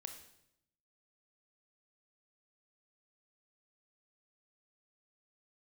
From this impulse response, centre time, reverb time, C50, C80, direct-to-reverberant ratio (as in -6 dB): 18 ms, 0.80 s, 8.0 dB, 11.0 dB, 5.5 dB